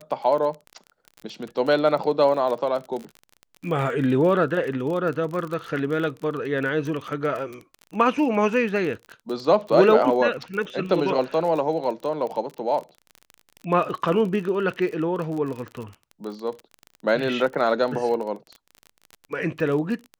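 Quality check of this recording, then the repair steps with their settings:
crackle 33 per s -30 dBFS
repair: de-click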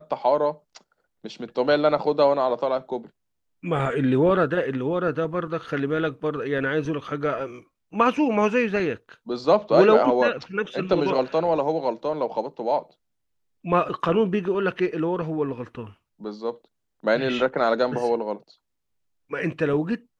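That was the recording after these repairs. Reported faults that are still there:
nothing left

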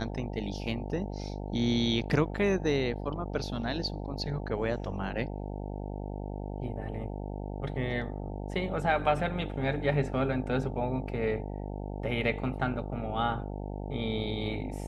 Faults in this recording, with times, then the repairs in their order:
buzz 50 Hz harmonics 18 -37 dBFS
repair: de-hum 50 Hz, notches 18

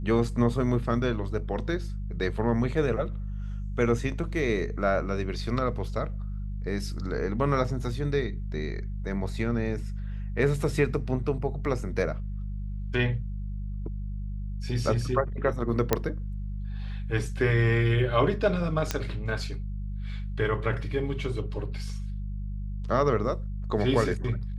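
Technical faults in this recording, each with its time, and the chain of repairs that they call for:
hum 50 Hz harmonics 4 -33 dBFS
15.93 s: pop -7 dBFS
18.91 s: pop -10 dBFS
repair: de-click; de-hum 50 Hz, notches 4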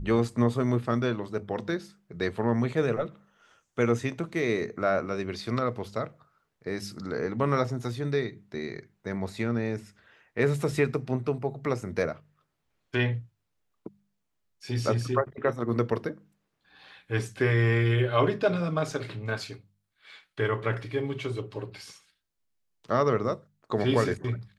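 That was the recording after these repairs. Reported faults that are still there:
nothing left

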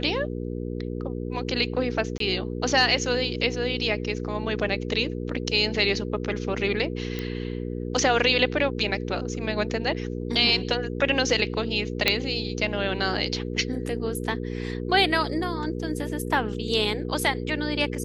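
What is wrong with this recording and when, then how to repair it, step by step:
hum 60 Hz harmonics 8 -31 dBFS
2.18–2.20 s: dropout 23 ms
7.19 s: pop -16 dBFS
12.08 s: pop -4 dBFS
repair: de-click; de-hum 60 Hz, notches 8; interpolate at 2.18 s, 23 ms

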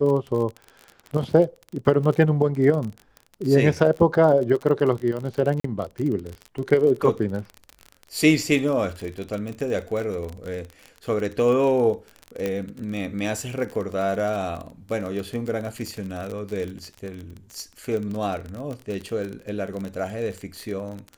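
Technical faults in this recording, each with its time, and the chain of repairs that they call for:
crackle 36 per s -28 dBFS
5.60–5.64 s: dropout 44 ms
12.46 s: pop -13 dBFS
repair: de-click; interpolate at 5.60 s, 44 ms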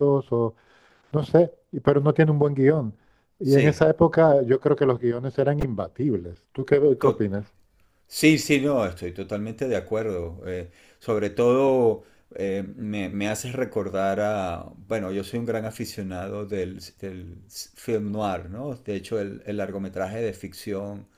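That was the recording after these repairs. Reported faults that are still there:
nothing left

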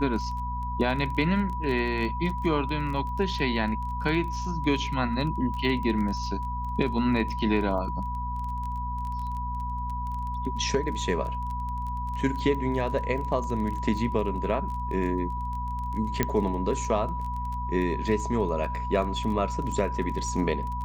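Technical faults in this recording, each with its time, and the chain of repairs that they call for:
crackle 21 per s -33 dBFS
hum 60 Hz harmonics 4 -33 dBFS
whine 980 Hz -32 dBFS
16.23 s: pop -9 dBFS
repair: de-click; de-hum 60 Hz, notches 4; band-stop 980 Hz, Q 30

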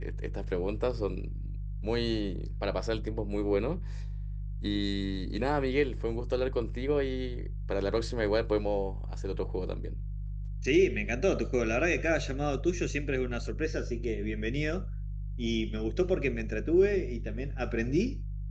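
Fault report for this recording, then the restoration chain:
hum 50 Hz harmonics 3 -36 dBFS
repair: de-hum 50 Hz, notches 3

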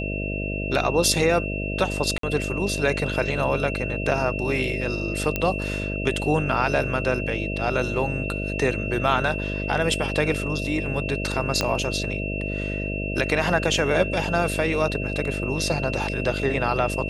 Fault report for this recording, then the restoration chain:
buzz 50 Hz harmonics 13 -29 dBFS
whine 2.7 kHz -31 dBFS
2.18–2.23 s: dropout 53 ms
5.36 s: pop -9 dBFS
11.61 s: pop -7 dBFS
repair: de-click; band-stop 2.7 kHz, Q 30; de-hum 50 Hz, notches 13; interpolate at 2.18 s, 53 ms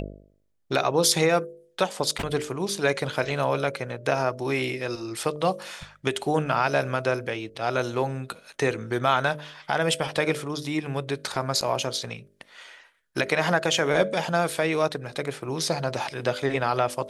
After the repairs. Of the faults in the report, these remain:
11.61 s: pop

